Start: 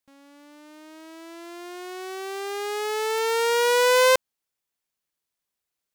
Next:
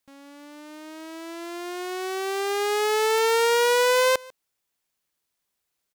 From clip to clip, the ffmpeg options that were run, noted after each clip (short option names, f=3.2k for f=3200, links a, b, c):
-af "acompressor=threshold=-23dB:ratio=6,aecho=1:1:146:0.0668,volume=5dB"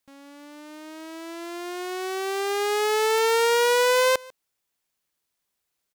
-af anull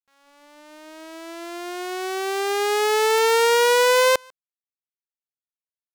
-af "aeval=exprs='sgn(val(0))*max(abs(val(0))-0.00531,0)':c=same,volume=3.5dB"